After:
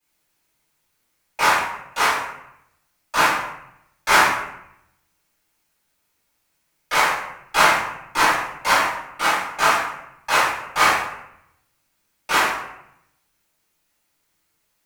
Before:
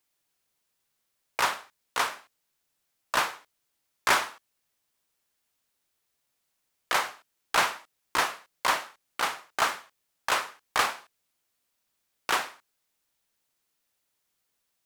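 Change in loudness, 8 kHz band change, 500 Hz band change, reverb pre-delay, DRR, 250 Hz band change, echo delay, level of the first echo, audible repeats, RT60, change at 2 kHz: +9.0 dB, +7.5 dB, +9.5 dB, 3 ms, -15.5 dB, +11.5 dB, no echo, no echo, no echo, 0.80 s, +10.0 dB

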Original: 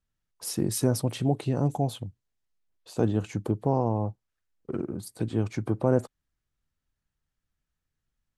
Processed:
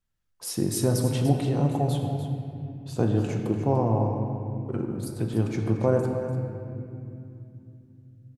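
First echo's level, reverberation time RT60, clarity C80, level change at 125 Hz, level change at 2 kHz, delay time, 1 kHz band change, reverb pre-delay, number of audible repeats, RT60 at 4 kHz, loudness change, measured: -11.0 dB, 2.7 s, 4.0 dB, +4.0 dB, +2.5 dB, 294 ms, +2.0 dB, 6 ms, 1, 1.7 s, +1.5 dB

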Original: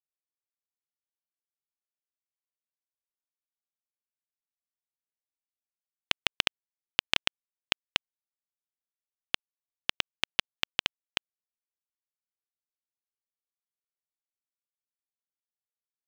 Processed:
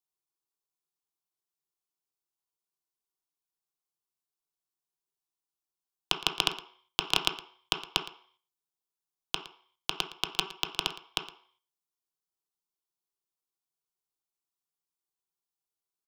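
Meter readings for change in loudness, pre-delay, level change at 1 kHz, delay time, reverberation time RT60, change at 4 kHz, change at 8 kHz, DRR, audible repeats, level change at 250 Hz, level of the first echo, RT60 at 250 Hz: -0.5 dB, 3 ms, +4.0 dB, 114 ms, 0.50 s, 0.0 dB, +3.5 dB, 4.0 dB, 1, +3.0 dB, -17.0 dB, 0.40 s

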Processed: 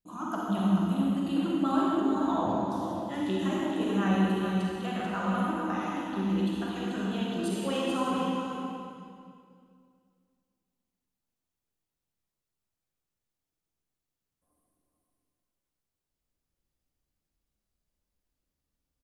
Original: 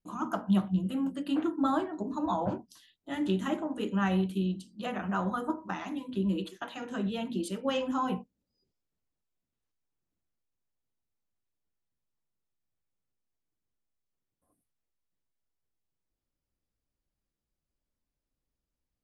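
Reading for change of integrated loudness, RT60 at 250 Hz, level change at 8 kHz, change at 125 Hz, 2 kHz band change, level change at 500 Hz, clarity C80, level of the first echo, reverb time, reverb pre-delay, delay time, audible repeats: +2.5 dB, 2.5 s, +4.0 dB, +2.5 dB, +2.5 dB, +2.5 dB, -2.5 dB, -6.0 dB, 2.2 s, 37 ms, 437 ms, 1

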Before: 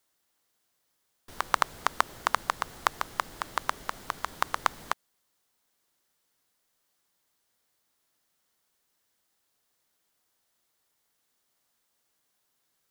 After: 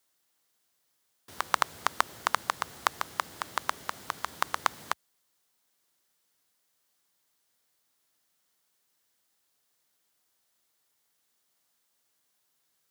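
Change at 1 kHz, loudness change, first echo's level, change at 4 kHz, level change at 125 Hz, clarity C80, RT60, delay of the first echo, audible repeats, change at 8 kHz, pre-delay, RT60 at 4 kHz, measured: -1.5 dB, -1.0 dB, no echo, +0.5 dB, -2.5 dB, no reverb, no reverb, no echo, no echo, +1.5 dB, no reverb, no reverb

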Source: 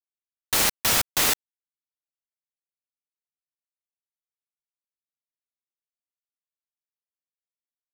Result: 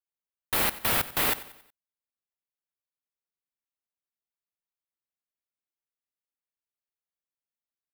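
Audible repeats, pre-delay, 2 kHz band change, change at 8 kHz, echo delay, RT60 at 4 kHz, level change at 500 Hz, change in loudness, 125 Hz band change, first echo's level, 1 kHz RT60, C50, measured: 3, no reverb, -3.0 dB, -9.5 dB, 92 ms, no reverb, -1.5 dB, -4.5 dB, -1.5 dB, -17.0 dB, no reverb, no reverb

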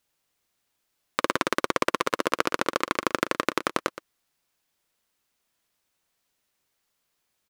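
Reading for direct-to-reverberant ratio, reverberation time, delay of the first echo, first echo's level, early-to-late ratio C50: no reverb, no reverb, 119 ms, -14.0 dB, no reverb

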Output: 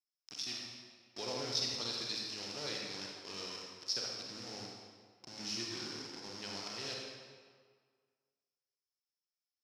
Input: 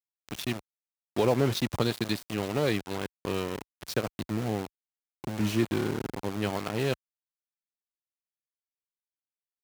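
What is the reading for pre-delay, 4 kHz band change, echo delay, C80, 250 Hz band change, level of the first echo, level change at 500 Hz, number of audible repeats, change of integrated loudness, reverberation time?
38 ms, +0.5 dB, no echo, 2.0 dB, -18.5 dB, no echo, -16.5 dB, no echo, -9.0 dB, 1.8 s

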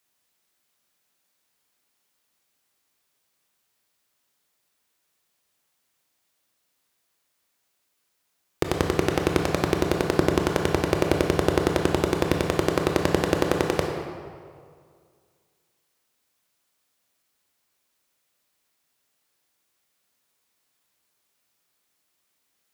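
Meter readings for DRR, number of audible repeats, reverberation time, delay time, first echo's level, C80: 1.5 dB, no echo, 2.1 s, no echo, no echo, 4.5 dB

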